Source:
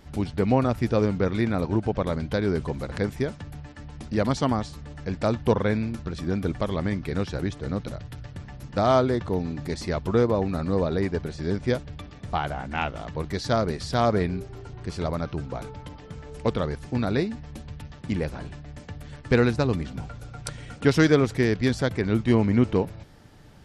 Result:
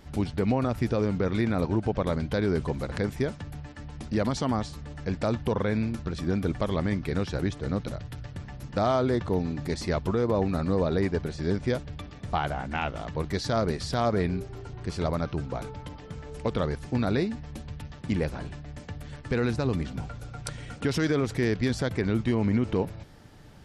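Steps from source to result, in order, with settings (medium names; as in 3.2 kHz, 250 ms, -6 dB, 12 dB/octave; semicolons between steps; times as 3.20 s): peak limiter -15 dBFS, peak gain reduction 9.5 dB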